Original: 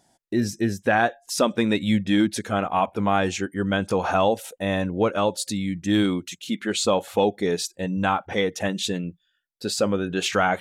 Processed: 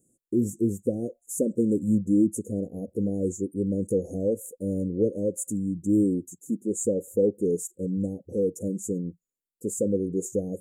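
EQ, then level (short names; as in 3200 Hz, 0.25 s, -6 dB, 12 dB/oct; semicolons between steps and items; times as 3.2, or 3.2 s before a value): Chebyshev band-stop 510–7000 Hz, order 5; low shelf 80 Hz -6 dB; 0.0 dB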